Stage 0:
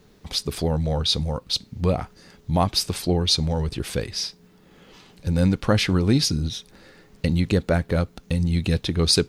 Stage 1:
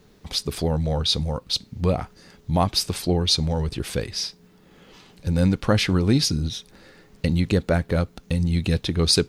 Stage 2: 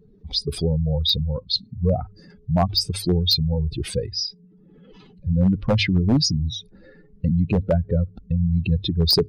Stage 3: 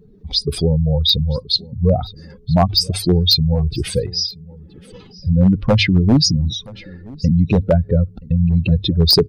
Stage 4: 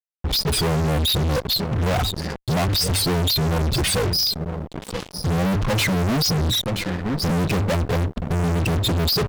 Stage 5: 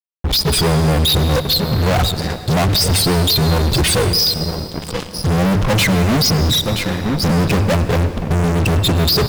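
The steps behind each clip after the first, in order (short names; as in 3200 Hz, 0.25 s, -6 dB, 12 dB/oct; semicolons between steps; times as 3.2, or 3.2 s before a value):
nothing audible
spectral contrast raised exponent 2.3; wavefolder -12.5 dBFS; notches 50/100 Hz; gain +2 dB
echo 0.975 s -22.5 dB; gain +5.5 dB
fuzz box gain 40 dB, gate -38 dBFS; gain -6 dB
bit-crush 9-bit; reverb RT60 2.7 s, pre-delay 93 ms, DRR 11 dB; gain +5.5 dB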